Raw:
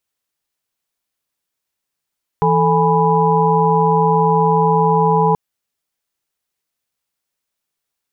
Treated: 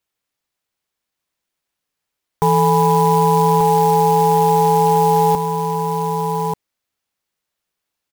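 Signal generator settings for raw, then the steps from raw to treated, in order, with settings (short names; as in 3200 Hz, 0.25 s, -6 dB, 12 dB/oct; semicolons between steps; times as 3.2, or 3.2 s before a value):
chord E3/A4/G#5/B5 sine, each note -16.5 dBFS 2.93 s
on a send: echo 1.187 s -6.5 dB; on the sum: clock jitter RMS 0.028 ms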